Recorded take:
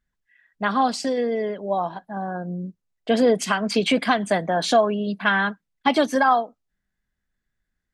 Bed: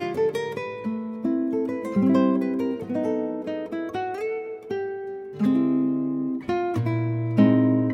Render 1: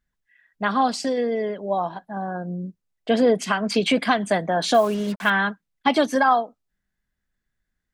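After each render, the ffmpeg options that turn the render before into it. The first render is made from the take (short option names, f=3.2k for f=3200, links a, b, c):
-filter_complex "[0:a]asettb=1/sr,asplit=3[a][b][c];[a]atrim=end=3.164[d];[b]atrim=start=3.16:end=3.64,asetpts=PTS-STARTPTS,afade=t=in:d=0.004:c=qsin,afade=t=out:st=0.476:d=0.004:c=qsin,highshelf=f=5.1k:g=-6[e];[c]atrim=start=3.636[f];[d][e]acrossfade=d=0.004:c1=hsin:c2=qsin[g];[g][f]acrossfade=d=0.004:c1=qsin:c2=hsin,asettb=1/sr,asplit=3[h][i][j];[h]atrim=end=4.744[k];[i]atrim=start=4.74:end=5.3,asetpts=PTS-STARTPTS,afade=t=in:d=0.004:c=qsin,afade=t=out:st=0.556:d=0.004:c=qsin,acrusher=bits=5:mix=0:aa=0.5[l];[j]atrim=start=5.296[m];[k][l]acrossfade=d=0.004:c1=hsin:c2=qsin[n];[n][m]acrossfade=d=0.004:c1=qsin:c2=hsin"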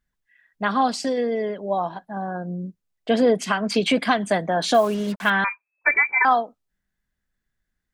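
-filter_complex "[0:a]asettb=1/sr,asplit=3[a][b][c];[a]atrim=end=5.444[d];[b]atrim=start=5.44:end=6.25,asetpts=PTS-STARTPTS,afade=t=in:d=0.004:c=qsin,afade=t=out:st=0.806:d=0.004:c=qsin,lowpass=f=2.2k:t=q:w=0.5098,lowpass=f=2.2k:t=q:w=0.6013,lowpass=f=2.2k:t=q:w=0.9,lowpass=f=2.2k:t=q:w=2.563,afreqshift=-2600[e];[c]atrim=start=6.246[f];[d][e]acrossfade=d=0.004:c1=hsin:c2=qsin[g];[g][f]acrossfade=d=0.004:c1=qsin:c2=hsin"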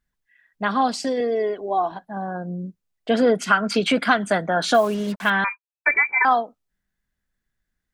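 -filter_complex "[0:a]asettb=1/sr,asplit=3[a][b][c];[a]atrim=end=1.204[d];[b]atrim=start=1.2:end=1.92,asetpts=PTS-STARTPTS,afade=t=in:d=0.004:c=qsin,afade=t=out:st=0.716:d=0.004:c=qsin,aecho=1:1:2.7:0.71,atrim=end_sample=31752[e];[c]atrim=start=1.916[f];[d][e]acrossfade=d=0.004:c1=hsin:c2=qsin[g];[g][f]acrossfade=d=0.004:c1=qsin:c2=hsin,asettb=1/sr,asplit=3[h][i][j];[h]atrim=end=3.144[k];[i]atrim=start=3.14:end=4.76,asetpts=PTS-STARTPTS,afade=t=in:d=0.004:c=qsin,afade=t=out:st=1.616:d=0.004:c=qsin,equalizer=f=1.4k:t=o:w=0.23:g=14[l];[j]atrim=start=4.756[m];[k][l]acrossfade=d=0.004:c1=hsin:c2=qsin[n];[n][m]acrossfade=d=0.004:c1=qsin:c2=hsin,asettb=1/sr,asplit=3[o][p][q];[o]atrim=end=5.284[r];[p]atrim=start=5.28:end=5.98,asetpts=PTS-STARTPTS,afade=t=in:d=0.004:c=qsin,afade=t=out:st=0.696:d=0.004:c=qsin,agate=range=-33dB:threshold=-36dB:ratio=3:release=100:detection=peak[s];[q]atrim=start=5.976[t];[r][s]acrossfade=d=0.004:c1=hsin:c2=qsin[u];[u][t]acrossfade=d=0.004:c1=qsin:c2=hsin"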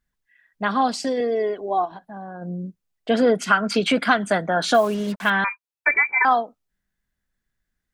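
-filter_complex "[0:a]asplit=3[a][b][c];[a]afade=t=out:st=1.84:d=0.02[d];[b]acompressor=threshold=-37dB:ratio=2:attack=3.2:release=140:knee=1:detection=peak,afade=t=in:st=1.84:d=0.02,afade=t=out:st=2.41:d=0.02[e];[c]afade=t=in:st=2.41:d=0.02[f];[d][e][f]amix=inputs=3:normalize=0"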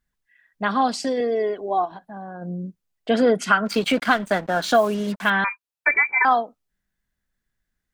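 -filter_complex "[0:a]asplit=3[a][b][c];[a]afade=t=out:st=3.65:d=0.02[d];[b]aeval=exprs='sgn(val(0))*max(abs(val(0))-0.0158,0)':c=same,afade=t=in:st=3.65:d=0.02,afade=t=out:st=4.73:d=0.02[e];[c]afade=t=in:st=4.73:d=0.02[f];[d][e][f]amix=inputs=3:normalize=0"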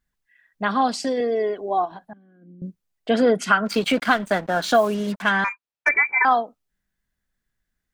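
-filter_complex "[0:a]asettb=1/sr,asplit=3[a][b][c];[a]atrim=end=2.134[d];[b]atrim=start=2.13:end=2.62,asetpts=PTS-STARTPTS,afade=t=in:d=0.004:c=qsin,afade=t=out:st=0.486:d=0.004:c=qsin,asplit=3[e][f][g];[e]bandpass=f=270:t=q:w=8,volume=0dB[h];[f]bandpass=f=2.29k:t=q:w=8,volume=-6dB[i];[g]bandpass=f=3.01k:t=q:w=8,volume=-9dB[j];[h][i][j]amix=inputs=3:normalize=0[k];[c]atrim=start=2.616[l];[d][k]acrossfade=d=0.004:c1=hsin:c2=qsin[m];[m][l]acrossfade=d=0.004:c1=qsin:c2=hsin,asettb=1/sr,asplit=3[n][o][p];[n]atrim=end=5.224[q];[o]atrim=start=5.22:end=5.89,asetpts=PTS-STARTPTS,afade=t=in:d=0.004:c=qsin,afade=t=out:st=0.666:d=0.004:c=qsin,adynamicsmooth=sensitivity=2:basefreq=5.3k[r];[p]atrim=start=5.886[s];[q][r]acrossfade=d=0.004:c1=hsin:c2=qsin[t];[t][s]acrossfade=d=0.004:c1=qsin:c2=hsin"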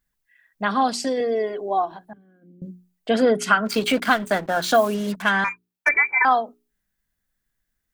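-af "highshelf=f=9.7k:g=9,bandreject=f=60:t=h:w=6,bandreject=f=120:t=h:w=6,bandreject=f=180:t=h:w=6,bandreject=f=240:t=h:w=6,bandreject=f=300:t=h:w=6,bandreject=f=360:t=h:w=6,bandreject=f=420:t=h:w=6"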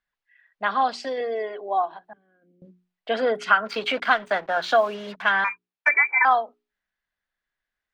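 -filter_complex "[0:a]acrossover=split=470 4400:gain=0.178 1 0.0631[a][b][c];[a][b][c]amix=inputs=3:normalize=0"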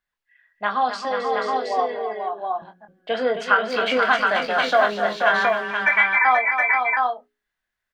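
-filter_complex "[0:a]asplit=2[a][b];[b]adelay=24,volume=-7.5dB[c];[a][c]amix=inputs=2:normalize=0,aecho=1:1:265|483|719:0.355|0.531|0.668"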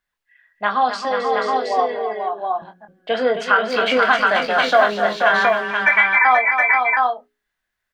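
-af "volume=3.5dB,alimiter=limit=-3dB:level=0:latency=1"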